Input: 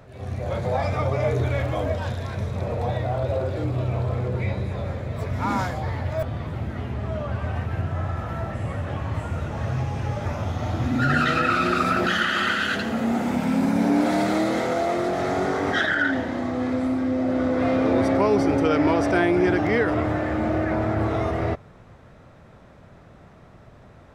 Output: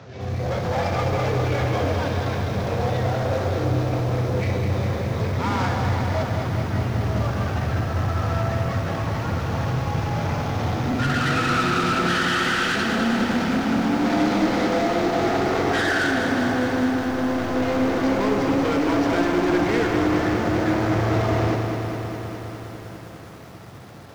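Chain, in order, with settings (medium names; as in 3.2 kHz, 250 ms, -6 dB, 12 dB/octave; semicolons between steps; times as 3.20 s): CVSD coder 32 kbps; high-pass 80 Hz 24 dB/octave; band-stop 610 Hz, Q 12; in parallel at 0 dB: peak limiter -17.5 dBFS, peak gain reduction 8.5 dB; on the sum: saturation -21 dBFS, distortion -9 dB; on a send at -8.5 dB: reverberation RT60 0.50 s, pre-delay 61 ms; on the sum: bit-crushed delay 204 ms, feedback 80%, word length 8-bit, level -6.5 dB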